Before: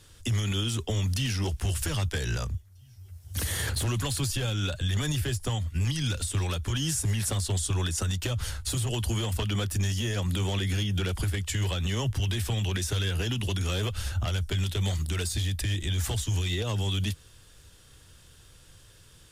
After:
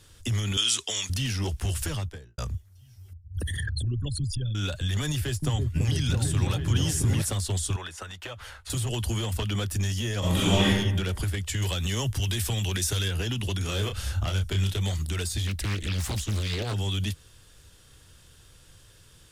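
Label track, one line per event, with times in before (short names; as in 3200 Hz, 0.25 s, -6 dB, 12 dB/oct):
0.570000	1.100000	weighting filter ITU-R 468
1.810000	2.380000	studio fade out
3.130000	4.550000	formant sharpening exponent 3
5.090000	7.220000	repeats that get brighter 0.333 s, low-pass from 400 Hz, each repeat up 1 oct, level 0 dB
7.760000	8.700000	three-band isolator lows -16 dB, under 480 Hz, highs -13 dB, over 3000 Hz
10.190000	10.680000	reverb throw, RT60 0.99 s, DRR -9.5 dB
11.620000	13.080000	high shelf 4600 Hz +8 dB
13.620000	14.790000	doubler 31 ms -6 dB
15.470000	16.740000	Doppler distortion depth 1 ms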